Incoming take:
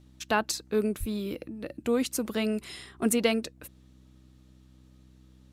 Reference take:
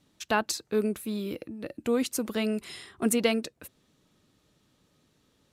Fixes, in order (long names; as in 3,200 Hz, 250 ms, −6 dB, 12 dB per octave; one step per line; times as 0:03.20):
hum removal 63.7 Hz, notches 5
0:00.99–0:01.11: high-pass filter 140 Hz 24 dB per octave